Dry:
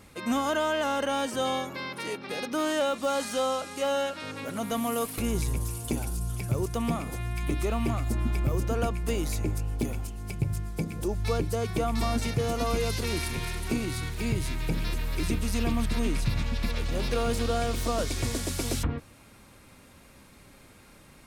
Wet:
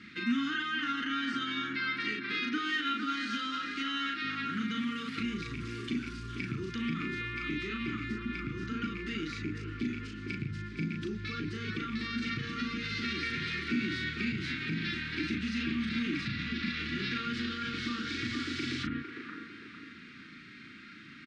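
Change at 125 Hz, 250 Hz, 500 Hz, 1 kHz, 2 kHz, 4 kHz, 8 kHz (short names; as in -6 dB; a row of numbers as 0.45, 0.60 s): -10.0, -2.0, -16.0, -6.5, +3.5, -0.5, -17.5 dB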